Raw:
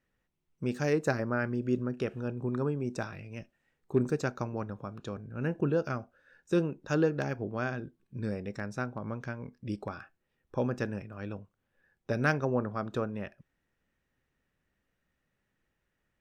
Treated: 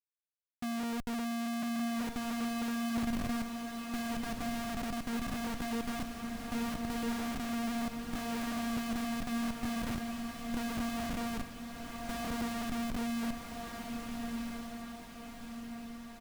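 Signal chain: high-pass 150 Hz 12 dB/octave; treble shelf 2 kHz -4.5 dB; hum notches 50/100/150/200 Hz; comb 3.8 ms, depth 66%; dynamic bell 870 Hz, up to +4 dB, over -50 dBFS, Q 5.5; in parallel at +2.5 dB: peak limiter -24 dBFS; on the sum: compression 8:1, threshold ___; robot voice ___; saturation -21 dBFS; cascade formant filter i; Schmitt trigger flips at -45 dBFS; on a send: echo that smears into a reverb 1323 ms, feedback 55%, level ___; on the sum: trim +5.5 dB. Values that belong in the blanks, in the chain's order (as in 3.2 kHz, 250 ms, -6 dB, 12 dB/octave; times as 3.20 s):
-26 dBFS, 233 Hz, -4 dB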